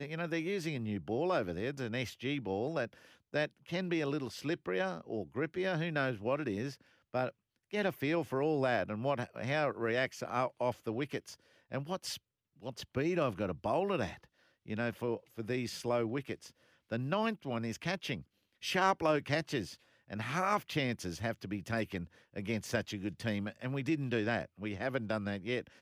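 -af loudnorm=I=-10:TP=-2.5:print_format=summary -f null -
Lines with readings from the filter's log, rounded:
Input Integrated:    -36.0 LUFS
Input True Peak:     -16.1 dBTP
Input LRA:             2.7 LU
Input Threshold:     -46.2 LUFS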